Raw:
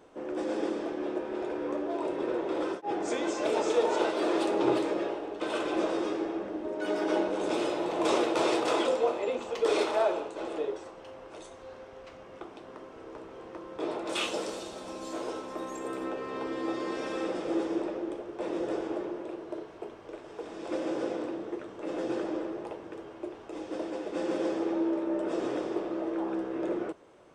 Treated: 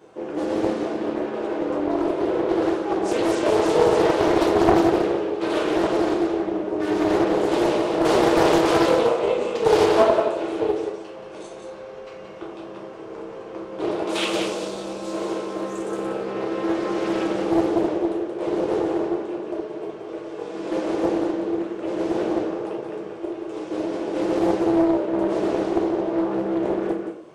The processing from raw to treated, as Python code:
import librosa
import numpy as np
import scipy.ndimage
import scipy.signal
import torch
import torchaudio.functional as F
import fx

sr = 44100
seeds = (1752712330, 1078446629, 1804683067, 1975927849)

y = scipy.signal.sosfilt(scipy.signal.butter(2, 80.0, 'highpass', fs=sr, output='sos'), x)
y = y + 10.0 ** (-5.5 / 20.0) * np.pad(y, (int(177 * sr / 1000.0), 0))[:len(y)]
y = fx.room_shoebox(y, sr, seeds[0], volume_m3=43.0, walls='mixed', distance_m=0.89)
y = fx.doppler_dist(y, sr, depth_ms=0.7)
y = F.gain(torch.from_numpy(y), 2.0).numpy()